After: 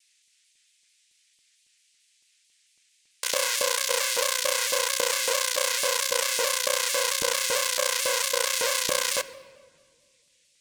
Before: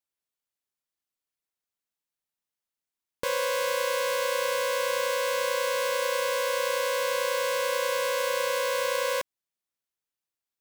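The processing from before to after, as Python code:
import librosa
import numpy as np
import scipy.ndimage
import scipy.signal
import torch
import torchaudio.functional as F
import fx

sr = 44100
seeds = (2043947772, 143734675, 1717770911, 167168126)

p1 = fx.wiener(x, sr, points=41)
p2 = fx.peak_eq(p1, sr, hz=7600.0, db=14.0, octaves=2.5)
p3 = fx.schmitt(p2, sr, flips_db=-28.0)
p4 = p2 + (p3 * 10.0 ** (-5.5 / 20.0))
p5 = fx.dmg_noise_band(p4, sr, seeds[0], low_hz=2000.0, high_hz=9300.0, level_db=-68.0)
p6 = fx.filter_lfo_highpass(p5, sr, shape='saw_up', hz=3.6, low_hz=280.0, high_hz=2900.0, q=0.73)
p7 = fx.room_shoebox(p6, sr, seeds[1], volume_m3=2600.0, walls='mixed', distance_m=0.45)
p8 = fx.vibrato_shape(p7, sr, shape='saw_down', rate_hz=4.5, depth_cents=100.0)
y = p8 * 10.0 ** (2.0 / 20.0)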